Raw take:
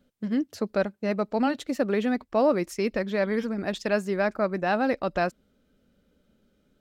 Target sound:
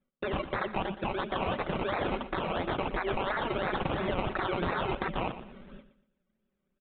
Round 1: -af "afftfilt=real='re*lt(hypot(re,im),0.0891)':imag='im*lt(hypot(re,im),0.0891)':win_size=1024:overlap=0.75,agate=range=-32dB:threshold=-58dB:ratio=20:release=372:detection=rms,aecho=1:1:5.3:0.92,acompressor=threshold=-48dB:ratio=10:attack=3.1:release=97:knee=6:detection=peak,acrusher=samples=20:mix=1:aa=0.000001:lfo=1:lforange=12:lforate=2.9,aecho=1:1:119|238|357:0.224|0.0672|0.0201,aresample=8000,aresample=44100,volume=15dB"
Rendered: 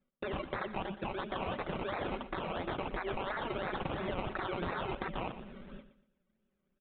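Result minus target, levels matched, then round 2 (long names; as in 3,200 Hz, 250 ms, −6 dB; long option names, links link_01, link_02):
downward compressor: peak gain reduction +6 dB
-af "afftfilt=real='re*lt(hypot(re,im),0.0891)':imag='im*lt(hypot(re,im),0.0891)':win_size=1024:overlap=0.75,agate=range=-32dB:threshold=-58dB:ratio=20:release=372:detection=rms,aecho=1:1:5.3:0.92,acompressor=threshold=-41.5dB:ratio=10:attack=3.1:release=97:knee=6:detection=peak,acrusher=samples=20:mix=1:aa=0.000001:lfo=1:lforange=12:lforate=2.9,aecho=1:1:119|238|357:0.224|0.0672|0.0201,aresample=8000,aresample=44100,volume=15dB"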